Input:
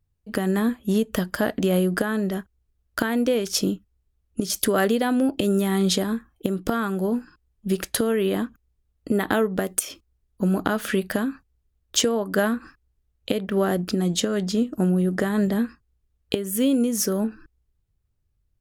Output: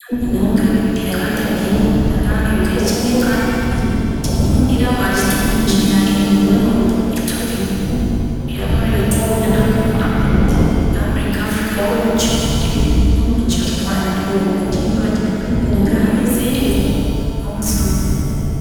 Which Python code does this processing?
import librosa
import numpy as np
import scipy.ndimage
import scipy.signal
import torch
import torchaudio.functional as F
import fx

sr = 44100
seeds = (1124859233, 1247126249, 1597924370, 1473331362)

p1 = fx.block_reorder(x, sr, ms=223.0, group=4)
p2 = fx.dmg_wind(p1, sr, seeds[0], corner_hz=120.0, level_db=-24.0)
p3 = fx.dispersion(p2, sr, late='lows', ms=133.0, hz=680.0)
p4 = fx.filter_lfo_notch(p3, sr, shape='sine', hz=0.78, low_hz=310.0, high_hz=1600.0, q=0.77)
p5 = fx.tube_stage(p4, sr, drive_db=19.0, bias=0.4)
p6 = p5 + fx.echo_wet_lowpass(p5, sr, ms=100, feedback_pct=75, hz=3800.0, wet_db=-4.0, dry=0)
p7 = fx.rev_shimmer(p6, sr, seeds[1], rt60_s=1.9, semitones=7, shimmer_db=-8, drr_db=-2.5)
y = p7 * librosa.db_to_amplitude(4.5)